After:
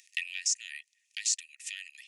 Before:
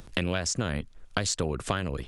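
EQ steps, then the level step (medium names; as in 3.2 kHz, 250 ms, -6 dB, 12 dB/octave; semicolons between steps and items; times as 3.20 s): rippled Chebyshev high-pass 1.8 kHz, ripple 9 dB; +3.5 dB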